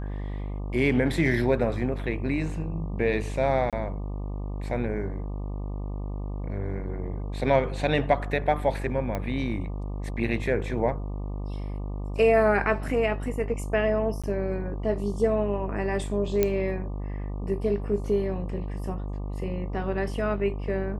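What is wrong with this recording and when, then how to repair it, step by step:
buzz 50 Hz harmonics 24 -32 dBFS
3.70–3.73 s: dropout 27 ms
9.15 s: pop -17 dBFS
14.22–14.24 s: dropout 16 ms
16.43 s: pop -9 dBFS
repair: de-click; de-hum 50 Hz, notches 24; interpolate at 3.70 s, 27 ms; interpolate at 14.22 s, 16 ms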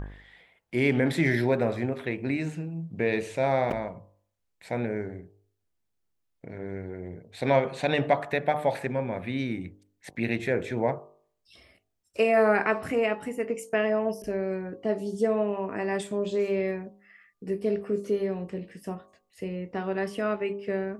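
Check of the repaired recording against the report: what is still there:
nothing left

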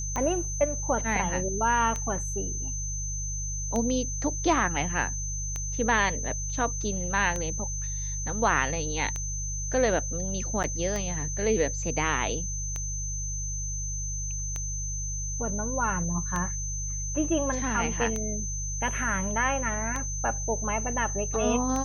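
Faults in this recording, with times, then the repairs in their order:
hum 50 Hz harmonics 3 -34 dBFS
tick 33 1/3 rpm -17 dBFS
whine 6.2 kHz -33 dBFS
10.63–10.64 s: dropout 8.8 ms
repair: de-click; de-hum 50 Hz, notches 3; band-stop 6.2 kHz, Q 30; interpolate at 10.63 s, 8.8 ms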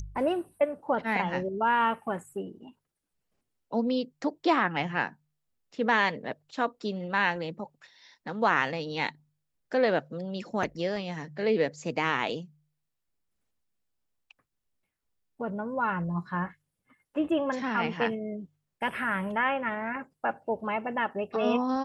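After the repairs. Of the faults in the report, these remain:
nothing left

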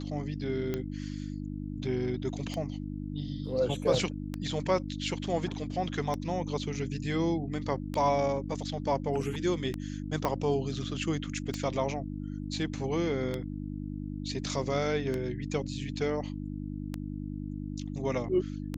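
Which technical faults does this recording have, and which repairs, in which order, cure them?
hum 50 Hz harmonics 6 -37 dBFS
tick 33 1/3 rpm -19 dBFS
10.25 s: pop -15 dBFS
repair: de-click; de-hum 50 Hz, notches 6

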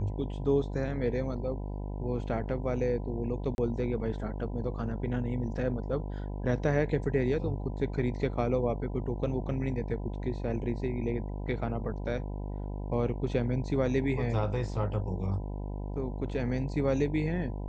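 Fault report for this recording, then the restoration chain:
buzz 50 Hz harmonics 20 -36 dBFS
3.55–3.58 s: dropout 31 ms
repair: de-hum 50 Hz, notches 20; interpolate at 3.55 s, 31 ms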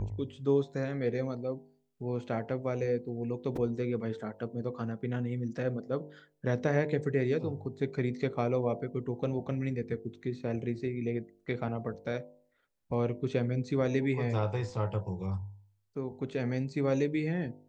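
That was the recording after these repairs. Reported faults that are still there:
nothing left

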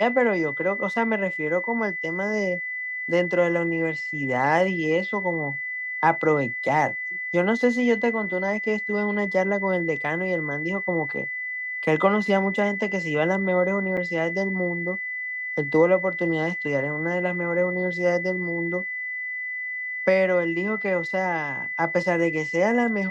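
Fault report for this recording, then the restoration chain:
whine 2 kHz -28 dBFS
13.97–13.98 s: dropout 6 ms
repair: band-stop 2 kHz, Q 30; interpolate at 13.97 s, 6 ms

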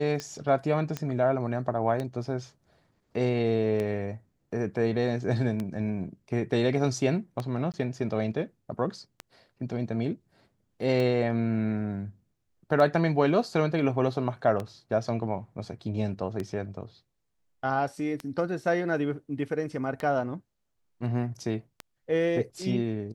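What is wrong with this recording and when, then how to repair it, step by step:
tick -19 dBFS
0.97 s: pop -17 dBFS
7.72–7.74 s: dropout 18 ms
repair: de-click; interpolate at 7.72 s, 18 ms

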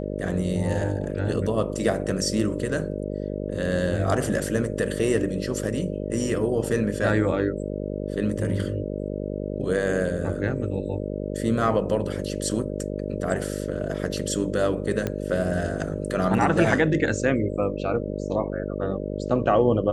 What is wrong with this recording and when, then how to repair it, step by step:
buzz 50 Hz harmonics 12 -30 dBFS
15.07 s: pop -13 dBFS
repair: de-click; de-hum 50 Hz, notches 12

